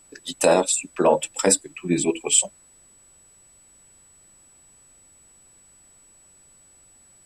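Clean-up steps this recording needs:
notch filter 7,900 Hz, Q 30
downward expander −46 dBFS, range −21 dB

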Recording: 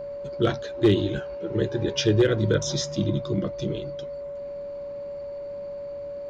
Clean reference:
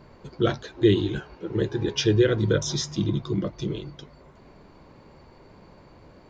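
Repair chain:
clipped peaks rebuilt −11.5 dBFS
notch filter 570 Hz, Q 30

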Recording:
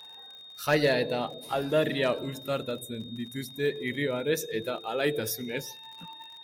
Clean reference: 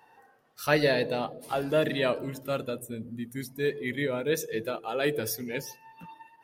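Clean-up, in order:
clipped peaks rebuilt −15 dBFS
click removal
notch filter 3,700 Hz, Q 30

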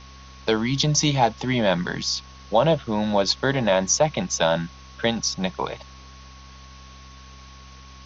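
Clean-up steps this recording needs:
hum removal 65.5 Hz, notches 4
notch filter 1,100 Hz, Q 30
noise reduction from a noise print 24 dB

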